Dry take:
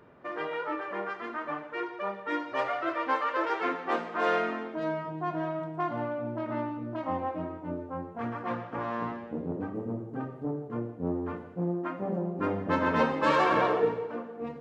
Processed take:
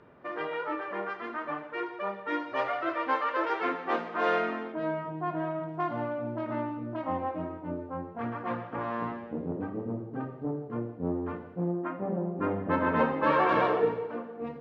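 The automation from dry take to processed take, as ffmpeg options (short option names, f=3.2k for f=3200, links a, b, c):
-af "asetnsamples=n=441:p=0,asendcmd='4.72 lowpass f 3000;5.69 lowpass f 5700;6.55 lowpass f 3900;11.71 lowpass f 2300;13.49 lowpass f 4300',lowpass=5.1k"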